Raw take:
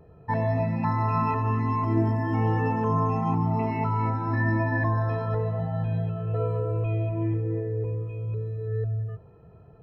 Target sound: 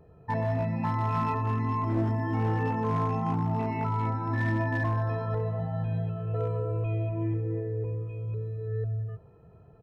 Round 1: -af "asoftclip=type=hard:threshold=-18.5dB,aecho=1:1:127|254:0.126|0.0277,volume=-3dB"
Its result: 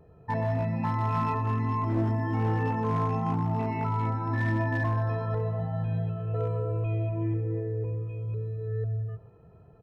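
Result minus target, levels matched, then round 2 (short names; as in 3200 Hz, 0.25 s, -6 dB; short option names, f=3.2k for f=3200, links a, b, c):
echo-to-direct +10.5 dB
-af "asoftclip=type=hard:threshold=-18.5dB,aecho=1:1:127:0.0376,volume=-3dB"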